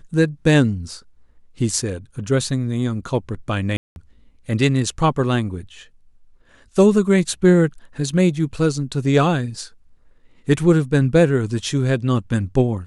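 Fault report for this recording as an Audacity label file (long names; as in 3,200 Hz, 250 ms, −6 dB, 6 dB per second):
3.770000	3.960000	drop-out 191 ms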